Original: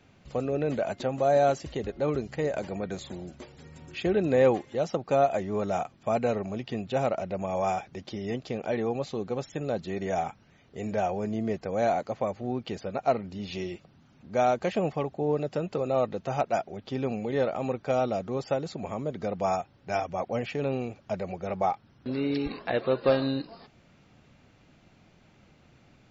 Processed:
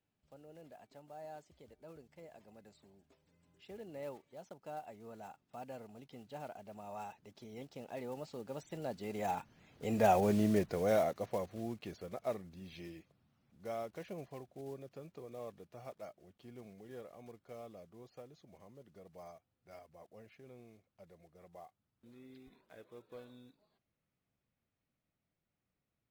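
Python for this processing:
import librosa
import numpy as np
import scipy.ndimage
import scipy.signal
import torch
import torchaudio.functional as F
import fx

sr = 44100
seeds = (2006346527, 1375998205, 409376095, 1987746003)

y = fx.block_float(x, sr, bits=5)
y = fx.doppler_pass(y, sr, speed_mps=30, closest_m=12.0, pass_at_s=10.23)
y = y * 10.0 ** (1.0 / 20.0)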